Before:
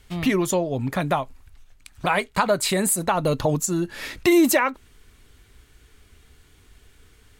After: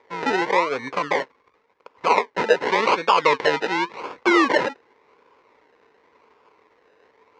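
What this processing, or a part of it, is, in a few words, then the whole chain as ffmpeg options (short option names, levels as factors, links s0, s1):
circuit-bent sampling toy: -filter_complex "[0:a]acrusher=samples=31:mix=1:aa=0.000001:lfo=1:lforange=18.6:lforate=0.9,highpass=440,equalizer=f=460:t=q:w=4:g=8,equalizer=f=670:t=q:w=4:g=-7,equalizer=f=1000:t=q:w=4:g=10,equalizer=f=2100:t=q:w=4:g=7,equalizer=f=3200:t=q:w=4:g=-5,equalizer=f=4700:t=q:w=4:g=-4,lowpass=f=5000:w=0.5412,lowpass=f=5000:w=1.3066,asettb=1/sr,asplit=3[s0][s1][s2];[s0]atrim=end=2.684[s3];[s1]atrim=start=2.68:end=4.01,asetpts=PTS-STARTPTS,afade=t=in:d=0.004:c=qsin,afade=t=out:st=1.326:d=0.004:c=qsin,equalizer=f=3600:t=o:w=1.6:g=5[s4];[s2]atrim=start=4.006[s5];[s3][s4]acrossfade=d=0.004:c1=hsin:c2=qsin[s6];[s6][s5]acrossfade=d=0.004:c1=qsin:c2=hsin,volume=1.26"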